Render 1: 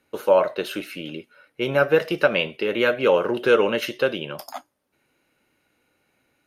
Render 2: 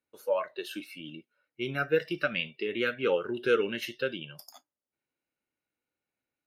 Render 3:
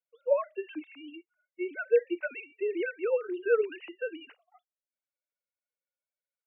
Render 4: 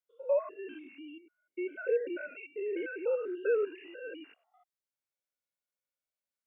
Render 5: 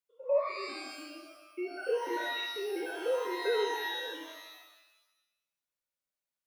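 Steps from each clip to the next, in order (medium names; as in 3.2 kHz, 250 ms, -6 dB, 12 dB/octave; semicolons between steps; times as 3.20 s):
spectral noise reduction 15 dB; trim -7.5 dB
formants replaced by sine waves
spectrogram pixelated in time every 100 ms
pitch-shifted reverb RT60 1 s, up +12 st, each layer -2 dB, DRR 5.5 dB; trim -1.5 dB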